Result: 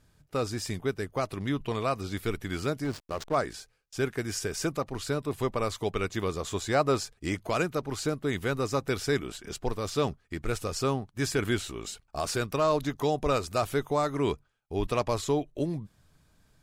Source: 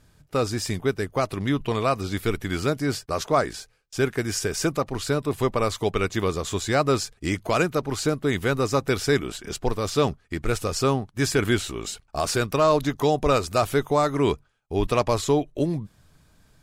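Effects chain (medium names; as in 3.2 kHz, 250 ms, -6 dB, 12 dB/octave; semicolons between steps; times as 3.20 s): 2.84–3.35 s: hysteresis with a dead band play -25 dBFS; 6.39–7.42 s: dynamic bell 730 Hz, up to +4 dB, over -35 dBFS, Q 0.78; trim -6 dB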